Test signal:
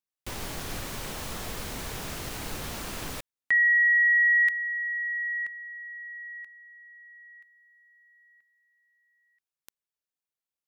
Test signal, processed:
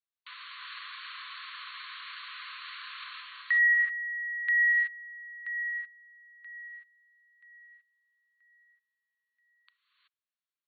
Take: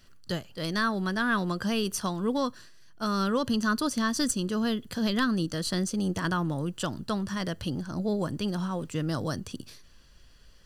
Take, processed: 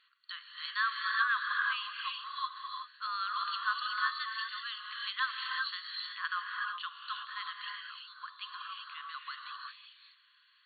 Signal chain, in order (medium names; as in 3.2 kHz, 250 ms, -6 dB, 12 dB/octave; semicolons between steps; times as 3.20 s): brick-wall FIR band-pass 1–4.5 kHz; dynamic bell 1.7 kHz, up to +3 dB, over -40 dBFS, Q 6.7; gated-style reverb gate 400 ms rising, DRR 0.5 dB; trim -3.5 dB